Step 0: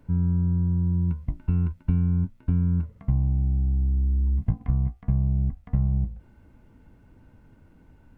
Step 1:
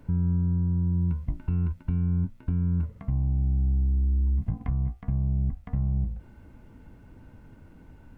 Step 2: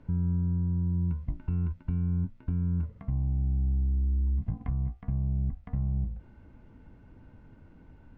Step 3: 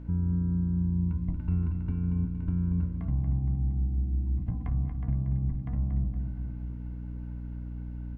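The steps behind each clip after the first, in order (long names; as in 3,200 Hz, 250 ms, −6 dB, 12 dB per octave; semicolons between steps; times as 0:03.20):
brickwall limiter −23 dBFS, peak gain reduction 11.5 dB; level +4 dB
high-frequency loss of the air 120 metres; level −3 dB
mains hum 60 Hz, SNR 12 dB; repeating echo 233 ms, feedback 52%, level −7.5 dB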